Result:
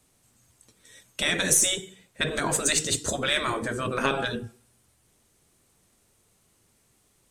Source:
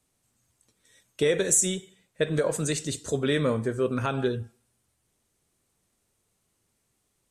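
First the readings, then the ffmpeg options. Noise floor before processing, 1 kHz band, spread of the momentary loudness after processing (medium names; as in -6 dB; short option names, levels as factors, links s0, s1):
-75 dBFS, +6.0 dB, 12 LU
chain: -af "afftfilt=real='re*lt(hypot(re,im),0.158)':imag='im*lt(hypot(re,im),0.158)':win_size=1024:overlap=0.75,aeval=exprs='0.168*(cos(1*acos(clip(val(0)/0.168,-1,1)))-cos(1*PI/2))+0.00266*(cos(8*acos(clip(val(0)/0.168,-1,1)))-cos(8*PI/2))':c=same,volume=2.66"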